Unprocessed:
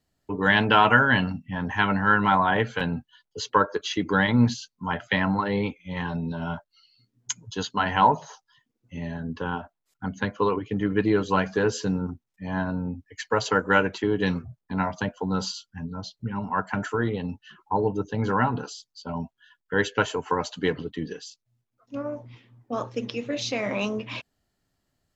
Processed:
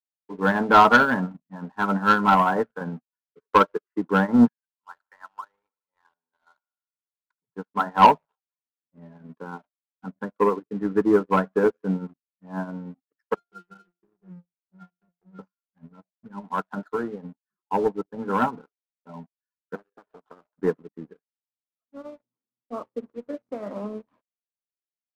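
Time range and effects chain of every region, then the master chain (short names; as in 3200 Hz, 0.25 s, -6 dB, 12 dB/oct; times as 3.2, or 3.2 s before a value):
4.47–7.42 Butterworth band-pass 2100 Hz, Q 0.72 + analogue delay 76 ms, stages 1024, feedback 65%, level -20 dB
13.34–15.39 transient shaper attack +2 dB, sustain -5 dB + octave resonator F, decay 0.24 s + thin delay 65 ms, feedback 59%, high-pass 4100 Hz, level -9 dB
19.75–20.58 HPF 150 Hz 24 dB/oct + compressor 16:1, threshold -29 dBFS + Doppler distortion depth 0.69 ms
whole clip: elliptic band-pass 170–1400 Hz; sample leveller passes 2; upward expander 2.5:1, over -35 dBFS; gain +3 dB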